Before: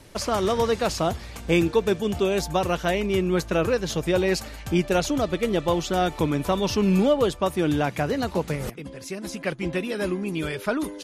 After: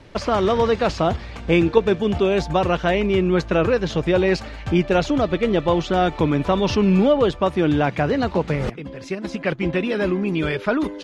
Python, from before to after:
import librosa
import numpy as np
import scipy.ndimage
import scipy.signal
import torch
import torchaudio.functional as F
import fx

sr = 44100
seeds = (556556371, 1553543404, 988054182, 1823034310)

p1 = scipy.signal.sosfilt(scipy.signal.butter(2, 3600.0, 'lowpass', fs=sr, output='sos'), x)
p2 = fx.level_steps(p1, sr, step_db=16)
p3 = p1 + (p2 * 10.0 ** (0.0 / 20.0))
y = p3 * 10.0 ** (2.0 / 20.0)